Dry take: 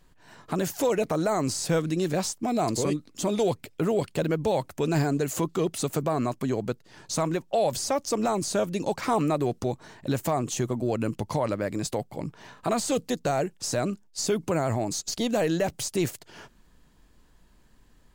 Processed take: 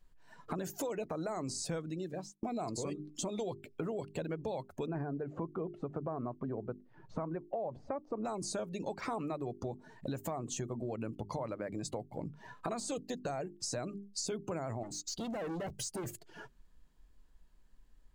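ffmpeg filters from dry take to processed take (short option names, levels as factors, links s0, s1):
-filter_complex "[0:a]asettb=1/sr,asplit=3[s0][s1][s2];[s0]atrim=end=4.864[s3];[s1]atrim=start=4.86:end=8.25,asetpts=PTS-STARTPTS,afade=t=in:d=0.004:c=qsin,afade=t=out:st=3.386:d=0.004:c=qsin,lowpass=1600[s4];[s2]atrim=start=8.246[s5];[s3][s4]acrossfade=d=0.004:c1=hsin:c2=qsin[s6];[s6][s5]acrossfade=d=0.004:c1=qsin:c2=hsin,asettb=1/sr,asplit=3[s7][s8][s9];[s7]atrim=end=14.834[s10];[s8]atrim=start=14.83:end=16.13,asetpts=PTS-STARTPTS,afade=t=in:d=0.004:c=qsin,afade=t=out:st=1.296:d=0.004:c=qsin,asoftclip=type=hard:threshold=0.0224[s11];[s9]atrim=start=16.126[s12];[s10][s11]acrossfade=d=0.004:c1=hsin:c2=qsin[s13];[s13][s12]acrossfade=d=0.004:c1=qsin:c2=hsin,asplit=2[s14][s15];[s14]atrim=end=2.43,asetpts=PTS-STARTPTS,afade=t=out:st=1.75:d=0.68[s16];[s15]atrim=start=2.43,asetpts=PTS-STARTPTS,afade=t=in:d=0.004:c=hsin[s17];[s16][s17]concat=n=2:v=0:a=1,bandreject=f=50:t=h:w=6,bandreject=f=100:t=h:w=6,bandreject=f=150:t=h:w=6,bandreject=f=200:t=h:w=6,bandreject=f=250:t=h:w=6,bandreject=f=300:t=h:w=6,bandreject=f=350:t=h:w=6,bandreject=f=400:t=h:w=6,afftdn=nr=15:nf=-41,acompressor=threshold=0.01:ratio=4,volume=1.26"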